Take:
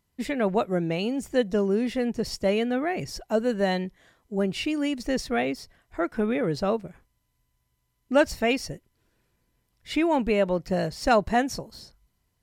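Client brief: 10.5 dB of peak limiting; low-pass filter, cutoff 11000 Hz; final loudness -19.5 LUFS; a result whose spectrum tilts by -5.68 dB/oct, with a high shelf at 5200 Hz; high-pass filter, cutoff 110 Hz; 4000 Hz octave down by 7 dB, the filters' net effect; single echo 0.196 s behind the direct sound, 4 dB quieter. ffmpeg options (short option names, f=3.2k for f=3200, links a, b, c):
-af "highpass=110,lowpass=11k,equalizer=f=4k:t=o:g=-8,highshelf=f=5.2k:g=-6,alimiter=limit=-20dB:level=0:latency=1,aecho=1:1:196:0.631,volume=9dB"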